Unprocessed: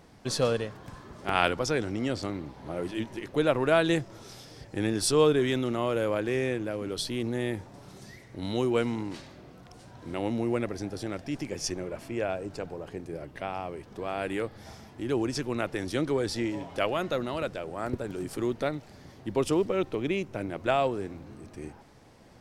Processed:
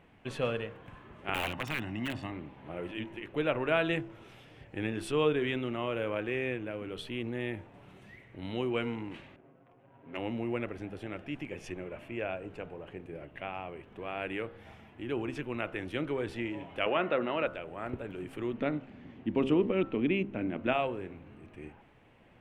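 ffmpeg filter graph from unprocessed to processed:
-filter_complex "[0:a]asettb=1/sr,asplit=3[a][b][c];[a]atrim=end=1.344[d];[b]atrim=start=1.34:end=2.32,asetpts=PTS-STARTPTS,afade=t=in:d=0.004:c=qsin,afade=t=out:st=0.976:d=0.004:c=qsin,highpass=94,aecho=1:1:1.1:0.78,atrim=end_sample=43218,aeval=exprs='(mod(9.44*val(0)+1,2)-1)/9.44':c=same[e];[c]atrim=start=2.316[f];[d][e]acrossfade=d=0.004:c1=hsin:c2=qsin[g];[g][f]acrossfade=d=0.004:c1=qsin:c2=hsin,asettb=1/sr,asplit=3[h][i][j];[h]atrim=end=9.364[k];[i]atrim=start=9.36:end=10.17,asetpts=PTS-STARTPTS,afade=t=in:d=0.004:c=qsin,afade=t=out:st=0.806:d=0.004:c=qsin,highpass=f=420:p=1,aecho=1:1:7.4:0.85,atrim=end_sample=35721,adynamicsmooth=sensitivity=7.5:basefreq=610[l];[j]atrim=start=10.166[m];[k][l]acrossfade=d=0.004:c1=hsin:c2=qsin[n];[n][m]acrossfade=d=0.004:c1=qsin:c2=hsin,asettb=1/sr,asplit=3[o][p][q];[o]atrim=end=16.864[r];[p]atrim=start=16.86:end=17.47,asetpts=PTS-STARTPTS,afade=t=in:d=0.004:c=qsin,afade=t=out:st=0.606:d=0.004:c=qsin,acontrast=58,highpass=210,lowpass=2.7k[s];[q]atrim=start=17.466[t];[r][s]acrossfade=d=0.004:c1=hsin:c2=qsin[u];[u][t]acrossfade=d=0.004:c1=qsin:c2=hsin,asettb=1/sr,asplit=3[v][w][x];[v]atrim=end=18.534[y];[w]atrim=start=18.53:end=20.73,asetpts=PTS-STARTPTS,afade=t=in:d=0.004:c=qsin,afade=t=out:st=2.196:d=0.004:c=qsin,lowpass=6.2k,equalizer=f=240:t=o:w=0.89:g=12.5[z];[x]atrim=start=20.726[aa];[y][z]acrossfade=d=0.004:c1=hsin:c2=qsin[ab];[ab][aa]acrossfade=d=0.004:c1=qsin:c2=hsin,highshelf=f=3.7k:t=q:w=3:g=-10.5,bandreject=f=66.69:t=h:w=4,bandreject=f=133.38:t=h:w=4,bandreject=f=200.07:t=h:w=4,bandreject=f=266.76:t=h:w=4,bandreject=f=333.45:t=h:w=4,bandreject=f=400.14:t=h:w=4,bandreject=f=466.83:t=h:w=4,bandreject=f=533.52:t=h:w=4,bandreject=f=600.21:t=h:w=4,bandreject=f=666.9:t=h:w=4,bandreject=f=733.59:t=h:w=4,bandreject=f=800.28:t=h:w=4,bandreject=f=866.97:t=h:w=4,bandreject=f=933.66:t=h:w=4,bandreject=f=1.00035k:t=h:w=4,bandreject=f=1.06704k:t=h:w=4,bandreject=f=1.13373k:t=h:w=4,bandreject=f=1.20042k:t=h:w=4,bandreject=f=1.26711k:t=h:w=4,bandreject=f=1.3338k:t=h:w=4,bandreject=f=1.40049k:t=h:w=4,bandreject=f=1.46718k:t=h:w=4,bandreject=f=1.53387k:t=h:w=4,volume=-5.5dB"

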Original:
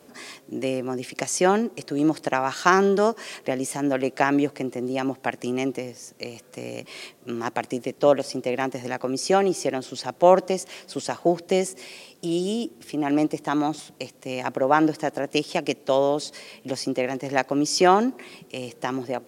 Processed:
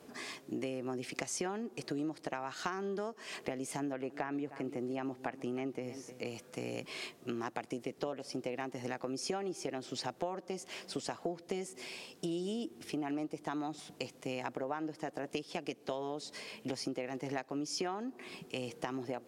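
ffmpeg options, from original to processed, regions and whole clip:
-filter_complex "[0:a]asettb=1/sr,asplit=3[a][b][c];[a]atrim=end=3.794[d];[b]atrim=start=3.79:end=6.25,asetpts=PTS-STARTPTS,afade=t=in:d=0.004:c=qsin,afade=t=out:st=2.456:d=0.004:c=qsin,acrossover=split=2600[e][f];[f]acompressor=threshold=-45dB:ratio=4:attack=1:release=60[g];[e][g]amix=inputs=2:normalize=0,aecho=1:1:307:0.119,atrim=end_sample=108486[h];[c]atrim=start=6.246[i];[d][h]acrossfade=d=0.004:c1=hsin:c2=qsin[j];[j][i]acrossfade=d=0.004:c1=qsin:c2=hsin,highshelf=f=7.4k:g=-6,bandreject=f=560:w=12,acompressor=threshold=-31dB:ratio=12,volume=-3dB"

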